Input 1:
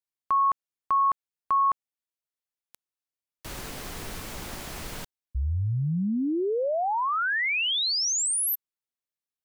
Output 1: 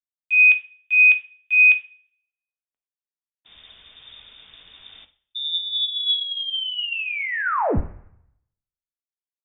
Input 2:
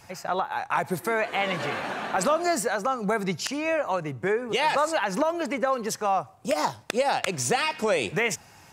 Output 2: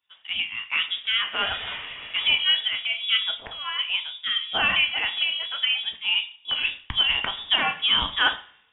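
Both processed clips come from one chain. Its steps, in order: two-slope reverb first 0.52 s, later 1.7 s, from -17 dB, DRR 6 dB; inverted band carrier 3600 Hz; three-band expander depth 100%

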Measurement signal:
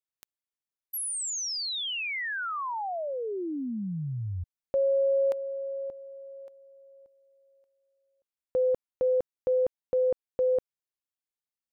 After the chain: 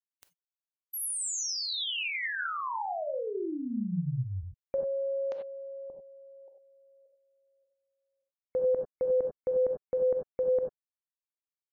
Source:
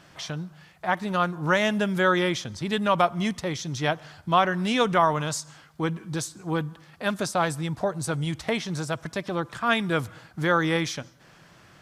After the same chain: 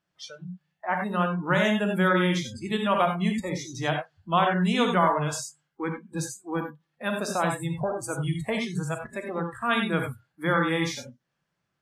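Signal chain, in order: non-linear reverb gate 0.11 s rising, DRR 2.5 dB; spectral noise reduction 26 dB; gain -3 dB

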